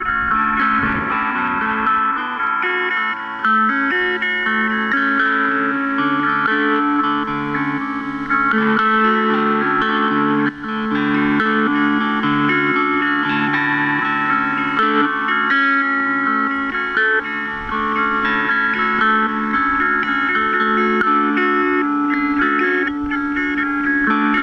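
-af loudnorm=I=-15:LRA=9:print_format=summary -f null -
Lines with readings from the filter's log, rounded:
Input Integrated:    -16.6 LUFS
Input True Peak:      -3.4 dBTP
Input LRA:             1.3 LU
Input Threshold:     -26.6 LUFS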